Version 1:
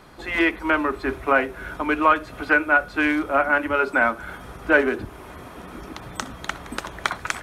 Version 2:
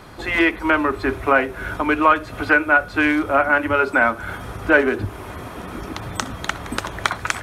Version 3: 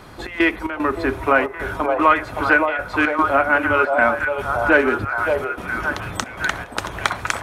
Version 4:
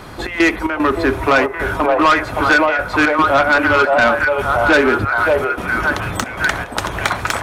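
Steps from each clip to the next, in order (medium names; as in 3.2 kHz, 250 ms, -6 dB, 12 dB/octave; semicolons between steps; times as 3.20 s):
in parallel at -2 dB: compression, threshold -27 dBFS, peak gain reduction 15 dB; on the sum: peaking EQ 100 Hz +11.5 dB 0.22 oct; trim +1 dB
trance gate "xx.xx.xxx" 113 bpm -12 dB; repeats whose band climbs or falls 569 ms, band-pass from 650 Hz, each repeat 0.7 oct, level -1 dB
saturation -14 dBFS, distortion -11 dB; trim +7 dB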